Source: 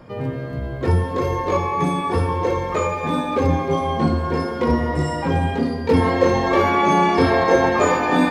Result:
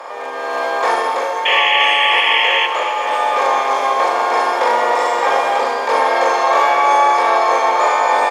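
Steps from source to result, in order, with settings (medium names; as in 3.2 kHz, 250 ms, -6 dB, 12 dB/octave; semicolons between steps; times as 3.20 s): spectral levelling over time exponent 0.4; ladder high-pass 600 Hz, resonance 35%; doubling 42 ms -3.5 dB; painted sound noise, 1.45–2.67 s, 1.7–3.4 kHz -17 dBFS; on a send: two-band feedback delay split 1.3 kHz, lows 505 ms, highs 258 ms, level -13 dB; on the sum: level rider gain up to 11.5 dB; trim -1 dB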